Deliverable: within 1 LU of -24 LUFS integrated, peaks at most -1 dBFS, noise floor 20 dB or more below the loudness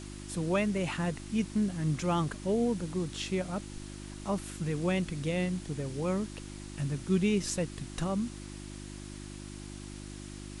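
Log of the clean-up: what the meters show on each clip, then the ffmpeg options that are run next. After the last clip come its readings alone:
hum 50 Hz; harmonics up to 350 Hz; hum level -41 dBFS; noise floor -44 dBFS; noise floor target -53 dBFS; loudness -32.5 LUFS; peak -17.0 dBFS; loudness target -24.0 LUFS
-> -af "bandreject=f=50:t=h:w=4,bandreject=f=100:t=h:w=4,bandreject=f=150:t=h:w=4,bandreject=f=200:t=h:w=4,bandreject=f=250:t=h:w=4,bandreject=f=300:t=h:w=4,bandreject=f=350:t=h:w=4"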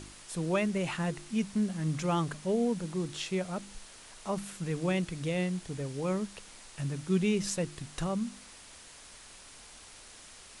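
hum none; noise floor -52 dBFS; noise floor target -53 dBFS
-> -af "afftdn=nr=6:nf=-52"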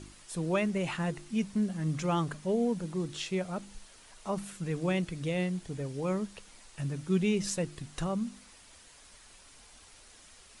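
noise floor -56 dBFS; loudness -33.0 LUFS; peak -16.5 dBFS; loudness target -24.0 LUFS
-> -af "volume=9dB"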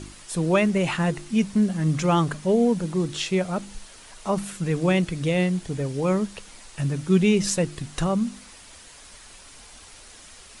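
loudness -24.0 LUFS; peak -7.5 dBFS; noise floor -47 dBFS

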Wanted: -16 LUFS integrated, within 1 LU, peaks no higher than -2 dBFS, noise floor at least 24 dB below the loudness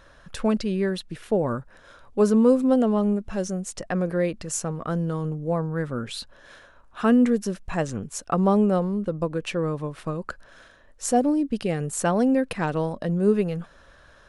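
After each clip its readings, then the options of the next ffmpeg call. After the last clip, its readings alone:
loudness -24.5 LUFS; peak -8.0 dBFS; loudness target -16.0 LUFS
-> -af "volume=8.5dB,alimiter=limit=-2dB:level=0:latency=1"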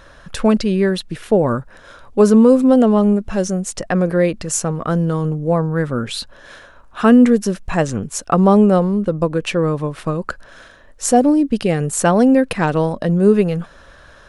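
loudness -16.0 LUFS; peak -2.0 dBFS; noise floor -45 dBFS

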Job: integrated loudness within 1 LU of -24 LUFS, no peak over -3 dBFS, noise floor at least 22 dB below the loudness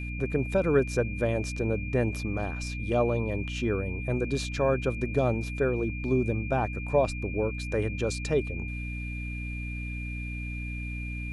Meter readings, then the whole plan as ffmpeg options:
hum 60 Hz; harmonics up to 300 Hz; hum level -33 dBFS; steady tone 2400 Hz; tone level -39 dBFS; loudness -29.5 LUFS; peak -10.5 dBFS; loudness target -24.0 LUFS
-> -af "bandreject=f=60:t=h:w=6,bandreject=f=120:t=h:w=6,bandreject=f=180:t=h:w=6,bandreject=f=240:t=h:w=6,bandreject=f=300:t=h:w=6"
-af "bandreject=f=2.4k:w=30"
-af "volume=5.5dB"

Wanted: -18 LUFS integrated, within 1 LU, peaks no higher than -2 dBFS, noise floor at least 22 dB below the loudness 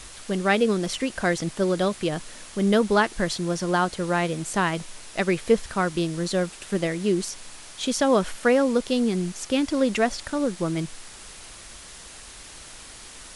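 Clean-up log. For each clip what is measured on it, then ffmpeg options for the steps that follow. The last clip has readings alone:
noise floor -44 dBFS; noise floor target -47 dBFS; loudness -24.5 LUFS; peak -7.5 dBFS; loudness target -18.0 LUFS
-> -af "afftdn=nr=6:nf=-44"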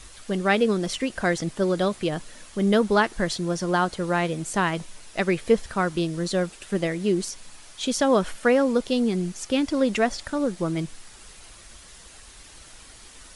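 noise floor -47 dBFS; loudness -24.5 LUFS; peak -7.5 dBFS; loudness target -18.0 LUFS
-> -af "volume=6.5dB,alimiter=limit=-2dB:level=0:latency=1"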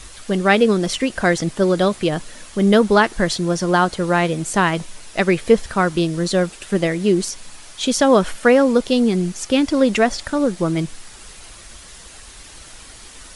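loudness -18.0 LUFS; peak -2.0 dBFS; noise floor -41 dBFS

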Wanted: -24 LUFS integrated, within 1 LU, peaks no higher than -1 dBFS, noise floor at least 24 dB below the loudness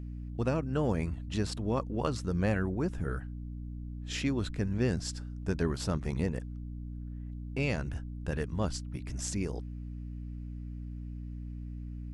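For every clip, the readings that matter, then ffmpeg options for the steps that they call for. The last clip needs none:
hum 60 Hz; harmonics up to 300 Hz; hum level -37 dBFS; loudness -35.0 LUFS; peak -15.5 dBFS; loudness target -24.0 LUFS
-> -af "bandreject=f=60:t=h:w=4,bandreject=f=120:t=h:w=4,bandreject=f=180:t=h:w=4,bandreject=f=240:t=h:w=4,bandreject=f=300:t=h:w=4"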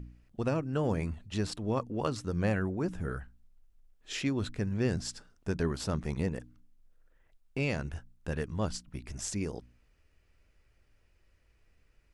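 hum none; loudness -34.0 LUFS; peak -16.5 dBFS; loudness target -24.0 LUFS
-> -af "volume=10dB"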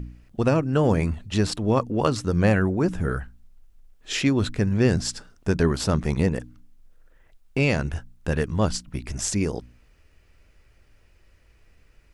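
loudness -24.0 LUFS; peak -6.5 dBFS; noise floor -58 dBFS

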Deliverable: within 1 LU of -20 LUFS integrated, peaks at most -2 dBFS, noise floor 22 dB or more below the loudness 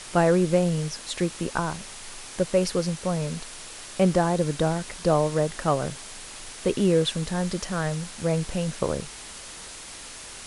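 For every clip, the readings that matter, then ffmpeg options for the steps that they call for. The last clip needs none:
noise floor -41 dBFS; noise floor target -48 dBFS; loudness -25.5 LUFS; peak -8.0 dBFS; loudness target -20.0 LUFS
-> -af "afftdn=nr=7:nf=-41"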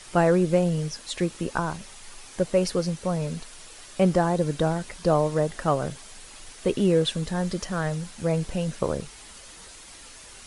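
noise floor -46 dBFS; noise floor target -48 dBFS
-> -af "afftdn=nr=6:nf=-46"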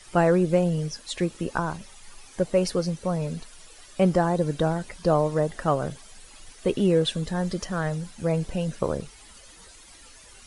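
noise floor -50 dBFS; loudness -26.0 LUFS; peak -8.5 dBFS; loudness target -20.0 LUFS
-> -af "volume=6dB"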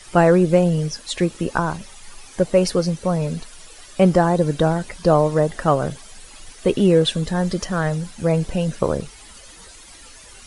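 loudness -20.0 LUFS; peak -2.5 dBFS; noise floor -44 dBFS

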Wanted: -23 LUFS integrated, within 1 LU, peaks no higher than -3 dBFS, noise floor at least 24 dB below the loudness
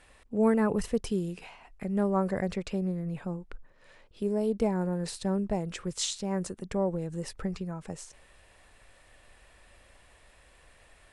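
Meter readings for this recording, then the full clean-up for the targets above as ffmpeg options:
loudness -31.0 LUFS; peak -13.5 dBFS; loudness target -23.0 LUFS
-> -af "volume=8dB"

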